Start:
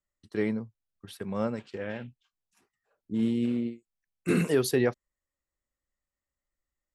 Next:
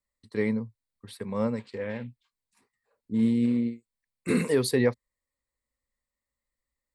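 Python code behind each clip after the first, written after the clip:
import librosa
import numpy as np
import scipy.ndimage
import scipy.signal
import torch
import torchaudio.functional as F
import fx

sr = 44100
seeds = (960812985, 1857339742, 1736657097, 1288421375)

y = fx.ripple_eq(x, sr, per_octave=0.96, db=8)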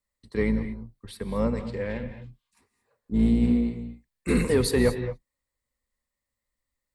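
y = fx.octave_divider(x, sr, octaves=2, level_db=-4.0)
y = 10.0 ** (-12.0 / 20.0) * np.tanh(y / 10.0 ** (-12.0 / 20.0))
y = fx.rev_gated(y, sr, seeds[0], gate_ms=250, shape='rising', drr_db=10.0)
y = F.gain(torch.from_numpy(y), 2.0).numpy()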